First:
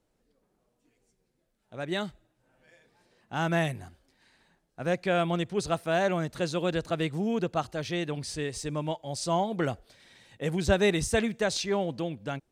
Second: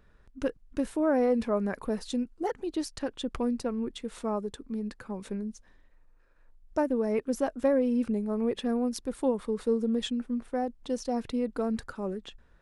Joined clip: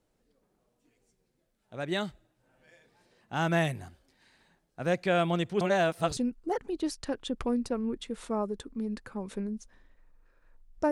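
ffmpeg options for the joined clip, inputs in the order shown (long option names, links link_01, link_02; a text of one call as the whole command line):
ffmpeg -i cue0.wav -i cue1.wav -filter_complex "[0:a]apad=whole_dur=10.91,atrim=end=10.91,asplit=2[link_01][link_02];[link_01]atrim=end=5.612[link_03];[link_02]atrim=start=5.608:end=6.172,asetpts=PTS-STARTPTS,areverse[link_04];[1:a]atrim=start=2.108:end=6.85[link_05];[link_03][link_04]acrossfade=duration=0.004:curve1=hsin:curve2=hsin[link_06];[link_06][link_05]acrossfade=duration=0.004:curve1=hsin:curve2=hsin" out.wav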